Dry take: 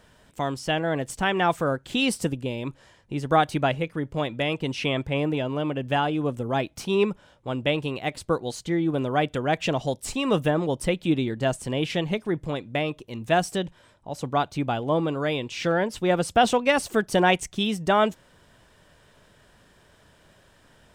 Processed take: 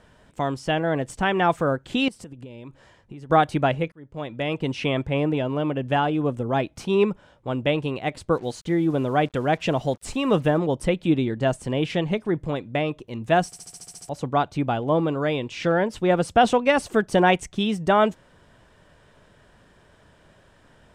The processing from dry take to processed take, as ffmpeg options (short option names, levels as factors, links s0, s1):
-filter_complex "[0:a]asettb=1/sr,asplit=3[s0][s1][s2];[s0]atrim=end=2.084[s3];[s1]atrim=start=2.08:end=3.3,asetpts=PTS-STARTPTS,afade=t=in:d=0.004:c=qsin,afade=t=out:st=1.216:d=0.004:c=qsin,acompressor=threshold=0.0141:ratio=20:attack=3.2:release=140:knee=1:detection=peak[s4];[s2]atrim=start=3.296[s5];[s3][s4]acrossfade=d=0.004:c1=hsin:c2=qsin[s6];[s6][s5]acrossfade=d=0.004:c1=qsin:c2=hsin,asettb=1/sr,asplit=3[s7][s8][s9];[s7]atrim=end=8.354[s10];[s8]atrim=start=8.35:end=10.58,asetpts=PTS-STARTPTS,afade=t=in:d=0.004:c=qsin,afade=t=out:st=2.226:d=0.004:c=qsin,acrusher=bits=7:mix=0:aa=0.5[s11];[s9]atrim=start=10.576[s12];[s10][s11]acrossfade=d=0.004:c1=hsin:c2=qsin[s13];[s13][s12]acrossfade=d=0.004:c1=qsin:c2=hsin,asplit=11[s14][s15][s16][s17][s18][s19][s20][s21][s22][s23][s24];[s14]atrim=end=3.92,asetpts=PTS-STARTPTS,afade=t=out:st=3.916:d=0.004:c=hsin[s25];[s15]atrim=start=3.92:end=13.532,asetpts=PTS-STARTPTS,afade=t=in:d=0.69[s26];[s16]atrim=start=13.458:end=13.532[s27];[s17]atrim=start=13.458:end=13.532[s28];[s18]atrim=start=13.458:end=13.532[s29];[s19]atrim=start=13.458:end=13.532[s30];[s20]atrim=start=13.458:end=13.532[s31];[s21]atrim=start=13.458:end=13.532[s32];[s22]atrim=start=13.458:end=13.532[s33];[s23]atrim=start=13.458:end=13.532[s34];[s24]atrim=start=14.088[s35];[s25][s26]concat=n=2:v=0:a=1[s36];[s36][s27]acrossfade=d=0.004:c1=hsin:c2=hsin[s37];[s37][s28]acrossfade=d=0.004:c1=hsin:c2=hsin[s38];[s38][s29]acrossfade=d=0.004:c1=hsin:c2=hsin[s39];[s39][s30]acrossfade=d=0.004:c1=hsin:c2=hsin[s40];[s40][s31]acrossfade=d=0.004:c1=hsin:c2=hsin[s41];[s41][s32]acrossfade=d=0.004:c1=hsin:c2=hsin[s42];[s42][s33]acrossfade=d=0.004:c1=hsin:c2=hsin[s43];[s43][s34]acrossfade=d=0.004:c1=hsin:c2=hsin[s44];[s44][s35]acrossfade=d=0.004:c1=hsin:c2=hsin,lowpass=9000,equalizer=f=5300:w=0.52:g=-5.5,volume=1.33"